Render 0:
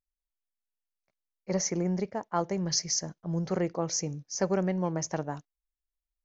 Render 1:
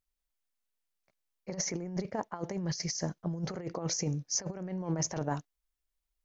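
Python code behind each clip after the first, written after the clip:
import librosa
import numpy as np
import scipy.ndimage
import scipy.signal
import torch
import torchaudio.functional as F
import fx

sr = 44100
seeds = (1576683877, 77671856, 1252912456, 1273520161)

y = fx.over_compress(x, sr, threshold_db=-33.0, ratio=-0.5)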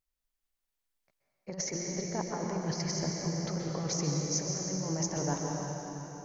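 y = fx.rev_plate(x, sr, seeds[0], rt60_s=4.0, hf_ratio=0.85, predelay_ms=115, drr_db=-1.0)
y = F.gain(torch.from_numpy(y), -1.5).numpy()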